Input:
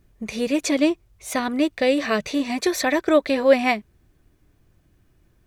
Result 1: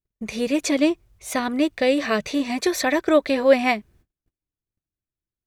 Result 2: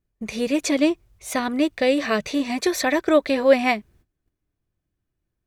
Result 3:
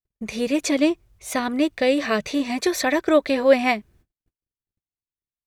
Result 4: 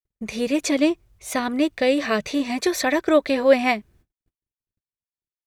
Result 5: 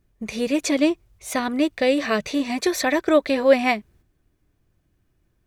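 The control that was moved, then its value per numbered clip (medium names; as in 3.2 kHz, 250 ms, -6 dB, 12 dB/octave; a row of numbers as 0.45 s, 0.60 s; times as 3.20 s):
gate, range: -33 dB, -19 dB, -45 dB, -58 dB, -7 dB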